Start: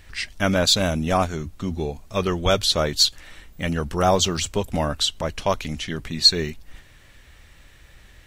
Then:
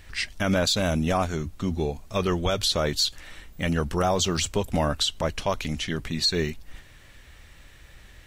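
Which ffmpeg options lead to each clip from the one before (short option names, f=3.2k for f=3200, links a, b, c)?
-af "alimiter=limit=-14dB:level=0:latency=1:release=66"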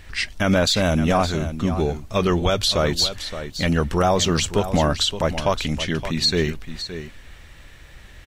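-filter_complex "[0:a]highshelf=f=6.3k:g=-4.5,asplit=2[a][b];[b]aecho=0:1:569:0.266[c];[a][c]amix=inputs=2:normalize=0,volume=5dB"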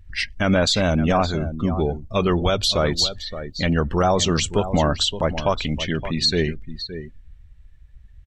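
-af "afftdn=nr=25:nf=-34"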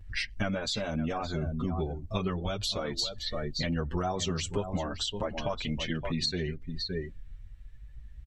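-filter_complex "[0:a]acompressor=threshold=-28dB:ratio=10,asplit=2[a][b];[b]adelay=7.2,afreqshift=0.41[c];[a][c]amix=inputs=2:normalize=1,volume=2.5dB"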